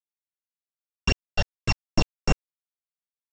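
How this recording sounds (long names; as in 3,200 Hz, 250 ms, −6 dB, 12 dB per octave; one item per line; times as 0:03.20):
a buzz of ramps at a fixed pitch in blocks of 16 samples
phaser sweep stages 8, 2.7 Hz, lowest notch 290–4,500 Hz
a quantiser's noise floor 6 bits, dither none
mu-law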